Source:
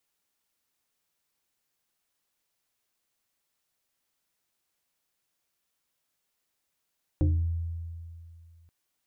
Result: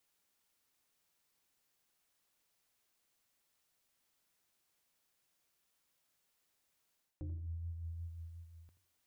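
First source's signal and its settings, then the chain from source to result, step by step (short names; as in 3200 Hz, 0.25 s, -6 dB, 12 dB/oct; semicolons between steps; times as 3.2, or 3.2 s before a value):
FM tone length 1.48 s, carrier 83.6 Hz, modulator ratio 2.63, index 1.2, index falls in 0.45 s exponential, decay 2.43 s, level -19 dB
limiter -26 dBFS; reverse; compressor 6:1, threshold -42 dBFS; reverse; warbling echo 83 ms, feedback 32%, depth 151 cents, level -13 dB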